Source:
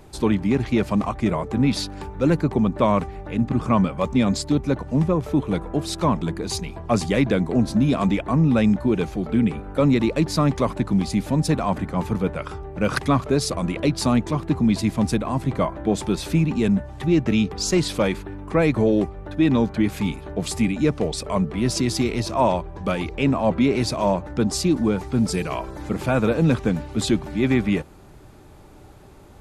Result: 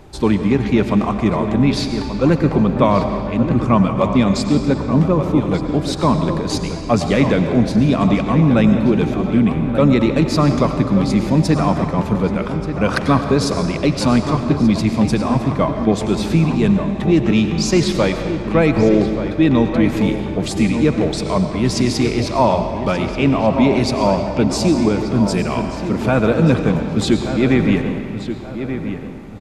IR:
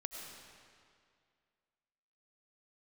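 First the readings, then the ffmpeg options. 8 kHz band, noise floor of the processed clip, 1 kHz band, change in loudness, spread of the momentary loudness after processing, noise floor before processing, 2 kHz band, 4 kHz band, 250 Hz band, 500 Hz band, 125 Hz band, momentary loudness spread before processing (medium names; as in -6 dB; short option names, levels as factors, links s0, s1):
+1.5 dB, -26 dBFS, +5.5 dB, +5.5 dB, 6 LU, -45 dBFS, +5.5 dB, +4.5 dB, +5.5 dB, +5.5 dB, +5.5 dB, 6 LU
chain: -filter_complex "[0:a]asplit=2[s0][s1];[s1]adelay=1182,lowpass=f=2700:p=1,volume=0.335,asplit=2[s2][s3];[s3]adelay=1182,lowpass=f=2700:p=1,volume=0.35,asplit=2[s4][s5];[s5]adelay=1182,lowpass=f=2700:p=1,volume=0.35,asplit=2[s6][s7];[s7]adelay=1182,lowpass=f=2700:p=1,volume=0.35[s8];[s0][s2][s4][s6][s8]amix=inputs=5:normalize=0,asplit=2[s9][s10];[1:a]atrim=start_sample=2205,lowpass=7500[s11];[s10][s11]afir=irnorm=-1:irlink=0,volume=1.5[s12];[s9][s12]amix=inputs=2:normalize=0,volume=0.841"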